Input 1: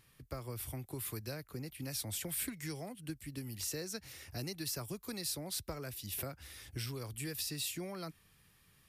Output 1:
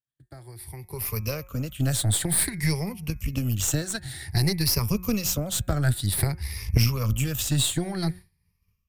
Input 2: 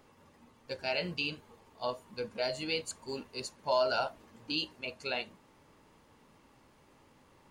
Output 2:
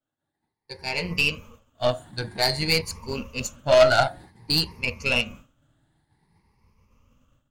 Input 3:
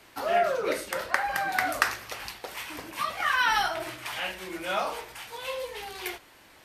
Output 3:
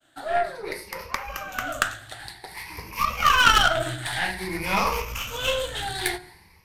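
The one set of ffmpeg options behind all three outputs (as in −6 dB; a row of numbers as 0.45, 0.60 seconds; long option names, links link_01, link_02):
-af "afftfilt=real='re*pow(10,14/40*sin(2*PI*(0.84*log(max(b,1)*sr/1024/100)/log(2)-(0.53)*(pts-256)/sr)))':imag='im*pow(10,14/40*sin(2*PI*(0.84*log(max(b,1)*sr/1024/100)/log(2)-(0.53)*(pts-256)/sr)))':win_size=1024:overlap=0.75,bandreject=frequency=180.7:width_type=h:width=4,bandreject=frequency=361.4:width_type=h:width=4,bandreject=frequency=542.1:width_type=h:width=4,bandreject=frequency=722.8:width_type=h:width=4,bandreject=frequency=903.5:width_type=h:width=4,bandreject=frequency=1084.2:width_type=h:width=4,bandreject=frequency=1264.9:width_type=h:width=4,bandreject=frequency=1445.6:width_type=h:width=4,bandreject=frequency=1626.3:width_type=h:width=4,bandreject=frequency=1807:width_type=h:width=4,bandreject=frequency=1987.7:width_type=h:width=4,bandreject=frequency=2168.4:width_type=h:width=4,bandreject=frequency=2349.1:width_type=h:width=4,bandreject=frequency=2529.8:width_type=h:width=4,agate=range=-33dB:threshold=-48dB:ratio=3:detection=peak,asubboost=boost=5.5:cutoff=160,dynaudnorm=framelen=670:gausssize=3:maxgain=16dB,aeval=exprs='0.944*(cos(1*acos(clip(val(0)/0.944,-1,1)))-cos(1*PI/2))+0.335*(cos(4*acos(clip(val(0)/0.944,-1,1)))-cos(4*PI/2))+0.237*(cos(6*acos(clip(val(0)/0.944,-1,1)))-cos(6*PI/2))+0.0335*(cos(7*acos(clip(val(0)/0.944,-1,1)))-cos(7*PI/2))':channel_layout=same,volume=-3.5dB"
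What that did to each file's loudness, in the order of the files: +15.0, +11.5, +5.0 LU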